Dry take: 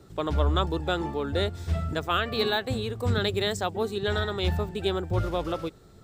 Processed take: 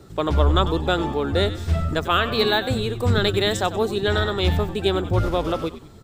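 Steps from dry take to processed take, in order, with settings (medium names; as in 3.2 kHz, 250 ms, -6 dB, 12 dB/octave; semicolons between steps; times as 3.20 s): frequency-shifting echo 95 ms, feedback 37%, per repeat -90 Hz, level -13 dB; trim +6 dB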